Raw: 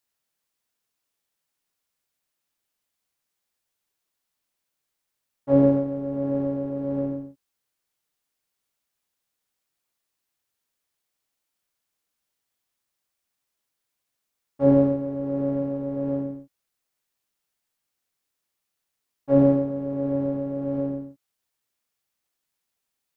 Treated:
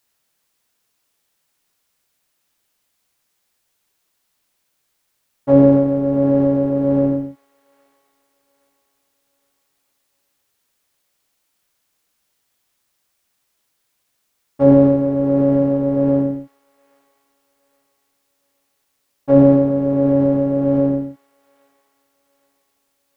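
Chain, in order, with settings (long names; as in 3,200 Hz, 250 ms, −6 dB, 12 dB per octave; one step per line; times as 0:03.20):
in parallel at +3 dB: brickwall limiter −19 dBFS, peak gain reduction 11.5 dB
on the sum: delay with a high-pass on its return 818 ms, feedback 42%, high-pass 2,000 Hz, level −14.5 dB
level +3.5 dB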